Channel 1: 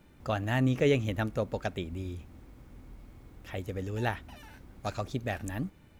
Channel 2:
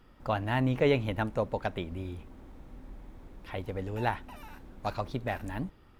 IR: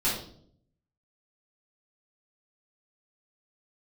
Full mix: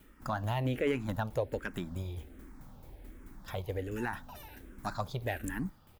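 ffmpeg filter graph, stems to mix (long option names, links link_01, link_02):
-filter_complex "[0:a]highshelf=frequency=5900:gain=8.5,asoftclip=type=hard:threshold=-24.5dB,aeval=exprs='val(0)*pow(10,-21*if(lt(mod(4.6*n/s,1),2*abs(4.6)/1000),1-mod(4.6*n/s,1)/(2*abs(4.6)/1000),(mod(4.6*n/s,1)-2*abs(4.6)/1000)/(1-2*abs(4.6)/1000))/20)':channel_layout=same,volume=-2.5dB[link_01];[1:a]alimiter=limit=-19dB:level=0:latency=1:release=154,asplit=2[link_02][link_03];[link_03]afreqshift=-1.3[link_04];[link_02][link_04]amix=inputs=2:normalize=1,adelay=0.8,volume=0dB,asplit=2[link_05][link_06];[link_06]apad=whole_len=264368[link_07];[link_01][link_07]sidechaincompress=threshold=-38dB:ratio=8:attack=16:release=159[link_08];[link_08][link_05]amix=inputs=2:normalize=0,equalizer=frequency=1600:width_type=o:width=0.3:gain=3,highshelf=frequency=8900:gain=10.5"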